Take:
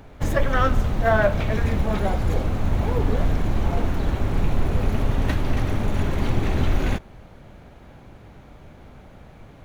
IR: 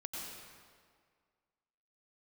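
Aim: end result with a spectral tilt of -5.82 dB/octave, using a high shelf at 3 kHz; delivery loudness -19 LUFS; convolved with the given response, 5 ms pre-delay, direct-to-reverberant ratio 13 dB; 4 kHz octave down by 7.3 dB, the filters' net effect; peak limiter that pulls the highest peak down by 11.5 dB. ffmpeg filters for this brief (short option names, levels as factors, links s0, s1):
-filter_complex "[0:a]highshelf=f=3000:g=-4.5,equalizer=f=4000:t=o:g=-6.5,alimiter=limit=0.119:level=0:latency=1,asplit=2[s0][s1];[1:a]atrim=start_sample=2205,adelay=5[s2];[s1][s2]afir=irnorm=-1:irlink=0,volume=0.237[s3];[s0][s3]amix=inputs=2:normalize=0,volume=3.35"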